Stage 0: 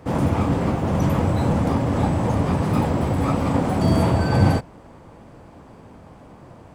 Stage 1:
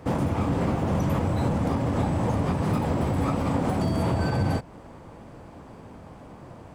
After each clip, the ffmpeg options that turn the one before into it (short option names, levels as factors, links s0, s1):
-af "alimiter=limit=0.158:level=0:latency=1:release=172"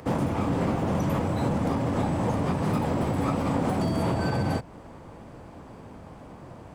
-filter_complex "[0:a]acrossover=split=120[s0][s1];[s0]asoftclip=type=tanh:threshold=0.0188[s2];[s1]acompressor=mode=upward:threshold=0.00501:ratio=2.5[s3];[s2][s3]amix=inputs=2:normalize=0"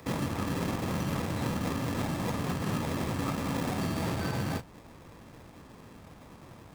-filter_complex "[0:a]flanger=delay=4.6:depth=7.9:regen=-84:speed=0.87:shape=sinusoidal,acrossover=split=770|4600[s0][s1][s2];[s0]acrusher=samples=30:mix=1:aa=0.000001[s3];[s3][s1][s2]amix=inputs=3:normalize=0,volume=0.891"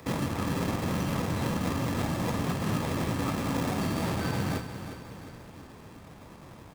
-af "aecho=1:1:358|716|1074|1432|1790:0.299|0.149|0.0746|0.0373|0.0187,volume=1.19"